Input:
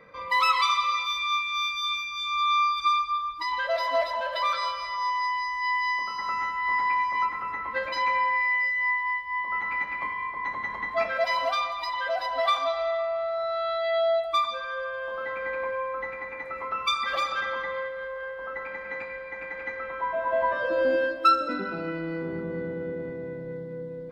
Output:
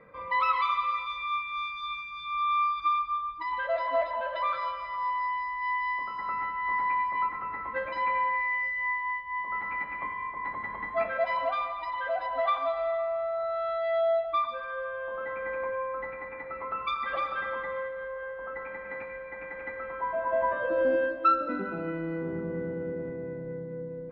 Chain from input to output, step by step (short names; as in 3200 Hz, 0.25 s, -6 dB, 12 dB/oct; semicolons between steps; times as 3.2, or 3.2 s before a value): air absorption 500 m